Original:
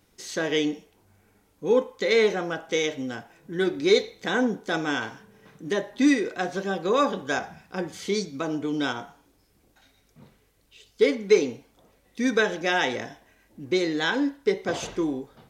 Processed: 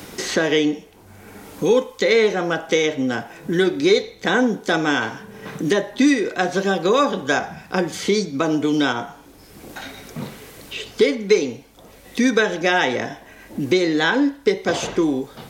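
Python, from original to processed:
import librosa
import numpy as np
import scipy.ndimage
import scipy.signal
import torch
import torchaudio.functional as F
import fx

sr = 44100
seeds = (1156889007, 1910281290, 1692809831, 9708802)

y = fx.band_squash(x, sr, depth_pct=70)
y = y * 10.0 ** (6.5 / 20.0)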